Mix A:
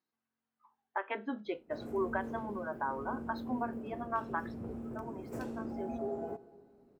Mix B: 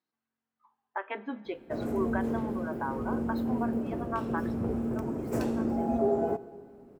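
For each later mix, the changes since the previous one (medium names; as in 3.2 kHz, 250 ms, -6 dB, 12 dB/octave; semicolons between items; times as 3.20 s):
speech: send on; background +11.0 dB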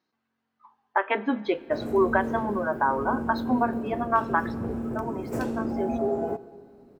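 speech +11.0 dB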